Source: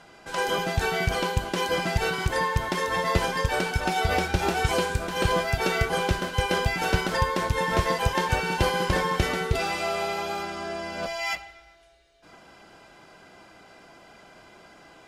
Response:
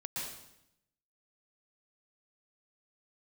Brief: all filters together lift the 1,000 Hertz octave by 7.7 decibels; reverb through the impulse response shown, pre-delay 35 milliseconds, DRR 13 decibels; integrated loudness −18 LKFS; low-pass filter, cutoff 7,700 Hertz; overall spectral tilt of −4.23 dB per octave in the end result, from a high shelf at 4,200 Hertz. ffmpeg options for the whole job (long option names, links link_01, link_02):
-filter_complex "[0:a]lowpass=7700,equalizer=frequency=1000:width_type=o:gain=9,highshelf=frequency=4200:gain=3.5,asplit=2[link_01][link_02];[1:a]atrim=start_sample=2205,adelay=35[link_03];[link_02][link_03]afir=irnorm=-1:irlink=0,volume=-14.5dB[link_04];[link_01][link_04]amix=inputs=2:normalize=0,volume=3.5dB"